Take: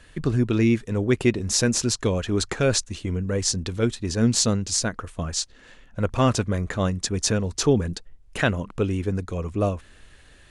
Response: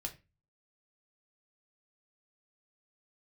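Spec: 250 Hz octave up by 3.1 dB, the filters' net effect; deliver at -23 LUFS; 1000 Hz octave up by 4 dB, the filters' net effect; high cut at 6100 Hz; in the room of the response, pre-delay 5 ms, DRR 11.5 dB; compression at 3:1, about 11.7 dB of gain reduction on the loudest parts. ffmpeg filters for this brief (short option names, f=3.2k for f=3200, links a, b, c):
-filter_complex "[0:a]lowpass=6.1k,equalizer=f=250:t=o:g=3.5,equalizer=f=1k:t=o:g=5,acompressor=threshold=-28dB:ratio=3,asplit=2[a][b];[1:a]atrim=start_sample=2205,adelay=5[c];[b][c]afir=irnorm=-1:irlink=0,volume=-10dB[d];[a][d]amix=inputs=2:normalize=0,volume=7.5dB"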